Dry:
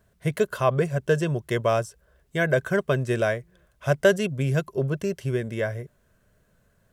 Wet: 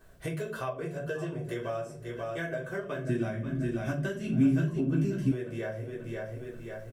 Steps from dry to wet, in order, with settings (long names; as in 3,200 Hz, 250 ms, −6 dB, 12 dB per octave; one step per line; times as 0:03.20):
parametric band 98 Hz −8 dB 0.66 octaves
repeating echo 537 ms, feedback 31%, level −12 dB
rectangular room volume 190 cubic metres, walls furnished, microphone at 3.6 metres
downward compressor 6 to 1, threshold −34 dBFS, peak gain reduction 26 dB
0:03.09–0:05.32: low shelf with overshoot 360 Hz +8.5 dB, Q 3